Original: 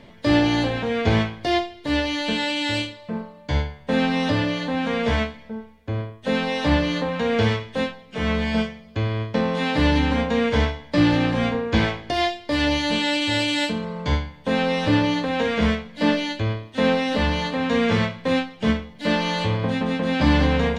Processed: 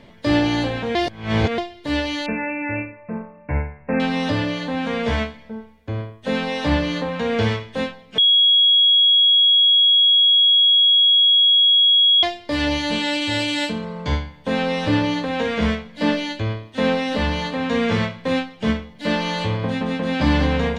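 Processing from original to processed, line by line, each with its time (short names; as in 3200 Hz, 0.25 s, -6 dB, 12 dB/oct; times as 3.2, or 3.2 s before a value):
0.95–1.58 reverse
2.26–4 brick-wall FIR low-pass 2800 Hz
8.18–12.23 bleep 3320 Hz -11 dBFS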